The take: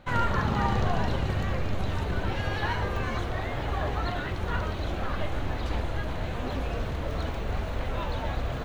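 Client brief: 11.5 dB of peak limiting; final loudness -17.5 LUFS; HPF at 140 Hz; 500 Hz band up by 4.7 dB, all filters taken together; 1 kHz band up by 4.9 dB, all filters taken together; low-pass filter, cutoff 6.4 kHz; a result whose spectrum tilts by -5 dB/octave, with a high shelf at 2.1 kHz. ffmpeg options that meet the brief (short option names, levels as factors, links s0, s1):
-af "highpass=140,lowpass=6400,equalizer=f=500:t=o:g=4.5,equalizer=f=1000:t=o:g=6.5,highshelf=f=2100:g=-7.5,volume=5.01,alimiter=limit=0.447:level=0:latency=1"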